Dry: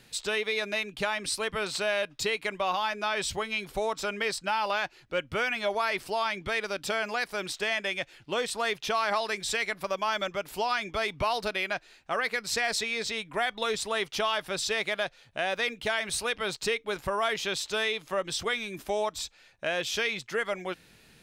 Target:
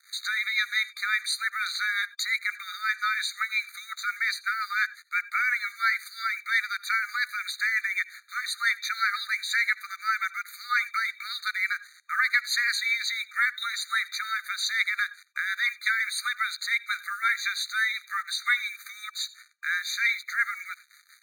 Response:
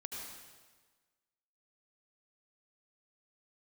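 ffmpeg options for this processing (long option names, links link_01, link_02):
-filter_complex "[0:a]acrossover=split=500[link_01][link_02];[link_01]aeval=exprs='val(0)*(1-0.5/2+0.5/2*cos(2*PI*5.7*n/s))':channel_layout=same[link_03];[link_02]aeval=exprs='val(0)*(1-0.5/2-0.5/2*cos(2*PI*5.7*n/s))':channel_layout=same[link_04];[link_03][link_04]amix=inputs=2:normalize=0,asplit=2[link_05][link_06];[link_06]acompressor=threshold=-38dB:ratio=16,volume=-3dB[link_07];[link_05][link_07]amix=inputs=2:normalize=0,equalizer=frequency=125:width_type=o:width=1:gain=-7,equalizer=frequency=500:width_type=o:width=1:gain=-7,equalizer=frequency=2000:width_type=o:width=1:gain=3,equalizer=frequency=8000:width_type=o:width=1:gain=-4,acrusher=bits=7:mix=0:aa=0.5,asplit=2[link_08][link_09];[1:a]atrim=start_sample=2205,atrim=end_sample=4410[link_10];[link_09][link_10]afir=irnorm=-1:irlink=0,volume=-9.5dB[link_11];[link_08][link_11]amix=inputs=2:normalize=0,afftfilt=real='re*eq(mod(floor(b*sr/1024/1200),2),1)':imag='im*eq(mod(floor(b*sr/1024/1200),2),1)':win_size=1024:overlap=0.75,volume=4.5dB"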